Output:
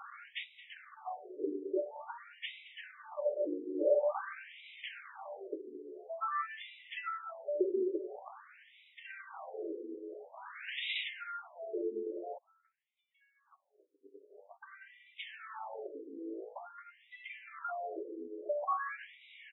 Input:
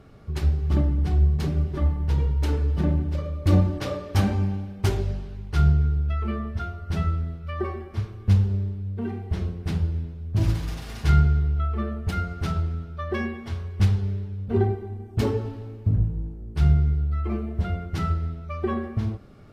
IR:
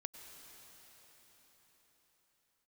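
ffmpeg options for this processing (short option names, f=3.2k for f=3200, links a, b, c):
-filter_complex "[0:a]acompressor=threshold=-31dB:ratio=5,alimiter=level_in=4dB:limit=-24dB:level=0:latency=1:release=401,volume=-4dB,asplit=2[a][b];[b]adelay=218,lowpass=f=2.3k:p=1,volume=-12dB,asplit=2[c][d];[d]adelay=218,lowpass=f=2.3k:p=1,volume=0.47,asplit=2[e][f];[f]adelay=218,lowpass=f=2.3k:p=1,volume=0.47,asplit=2[g][h];[h]adelay=218,lowpass=f=2.3k:p=1,volume=0.47,asplit=2[i][j];[j]adelay=218,lowpass=f=2.3k:p=1,volume=0.47[k];[a][c][e][g][i][k]amix=inputs=6:normalize=0,asettb=1/sr,asplit=3[l][m][n];[l]atrim=end=12.384[o];[m]atrim=start=12.38:end=14.63,asetpts=PTS-STARTPTS,afade=t=in:d=0.004:c=qsin,afade=t=out:st=2.246:d=0.004:c=qsin,agate=range=-37dB:threshold=-30dB:ratio=16:detection=peak[p];[n]atrim=start=14.626[q];[o][p]acrossfade=d=0.004:c1=hsin:c2=qsin[r];[r][q]acrossfade=d=0.004:c1=qsin:c2=hsin,equalizer=f=190:w=1.4:g=-12,afftfilt=real='re*between(b*sr/1024,360*pow(2800/360,0.5+0.5*sin(2*PI*0.48*pts/sr))/1.41,360*pow(2800/360,0.5+0.5*sin(2*PI*0.48*pts/sr))*1.41)':imag='im*between(b*sr/1024,360*pow(2800/360,0.5+0.5*sin(2*PI*0.48*pts/sr))/1.41,360*pow(2800/360,0.5+0.5*sin(2*PI*0.48*pts/sr))*1.41)':win_size=1024:overlap=0.75,volume=14.5dB"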